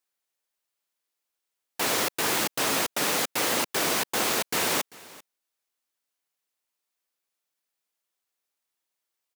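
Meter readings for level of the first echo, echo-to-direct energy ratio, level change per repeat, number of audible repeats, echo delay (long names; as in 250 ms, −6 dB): −21.5 dB, −21.5 dB, repeats not evenly spaced, 1, 392 ms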